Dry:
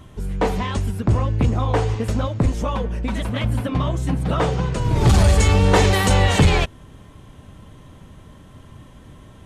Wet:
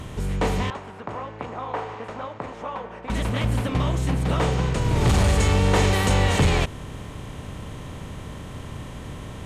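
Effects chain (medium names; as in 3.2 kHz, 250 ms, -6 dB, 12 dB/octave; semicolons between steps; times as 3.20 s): spectral levelling over time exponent 0.6; 0.70–3.10 s: band-pass filter 950 Hz, Q 1.1; trim -7 dB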